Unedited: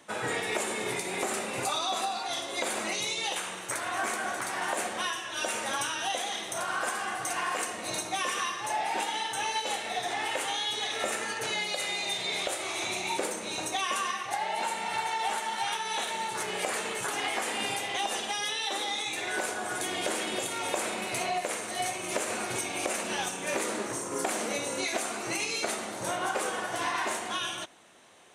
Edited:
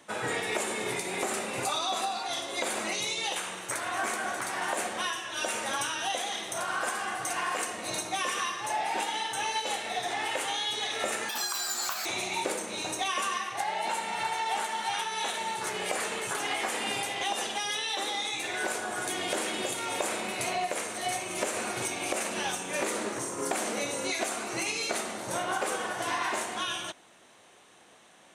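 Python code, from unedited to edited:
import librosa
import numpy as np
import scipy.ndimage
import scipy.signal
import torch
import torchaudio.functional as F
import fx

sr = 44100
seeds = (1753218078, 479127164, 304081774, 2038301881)

y = fx.edit(x, sr, fx.speed_span(start_s=11.29, length_s=1.5, speed=1.96), tone=tone)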